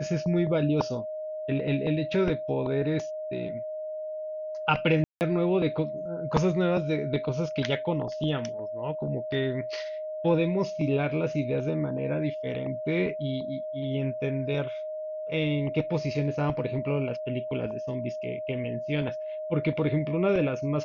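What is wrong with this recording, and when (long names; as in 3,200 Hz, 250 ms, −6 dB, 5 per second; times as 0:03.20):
whistle 620 Hz −32 dBFS
0:05.04–0:05.21: drop-out 169 ms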